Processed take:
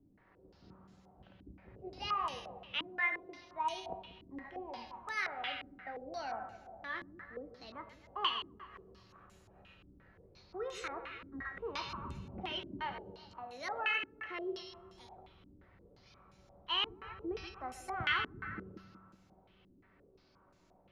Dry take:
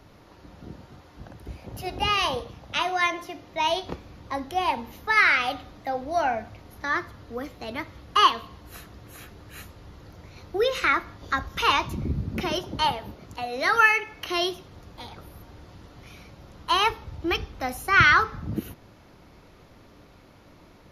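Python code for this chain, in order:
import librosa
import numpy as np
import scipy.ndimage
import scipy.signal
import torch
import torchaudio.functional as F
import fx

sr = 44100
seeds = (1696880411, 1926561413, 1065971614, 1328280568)

y = fx.comb_fb(x, sr, f0_hz=190.0, decay_s=0.98, harmonics='all', damping=0.0, mix_pct=80)
y = fx.echo_split(y, sr, split_hz=640.0, low_ms=184, high_ms=127, feedback_pct=52, wet_db=-9.5)
y = fx.filter_held_lowpass(y, sr, hz=5.7, low_hz=290.0, high_hz=7800.0)
y = y * librosa.db_to_amplitude(-5.5)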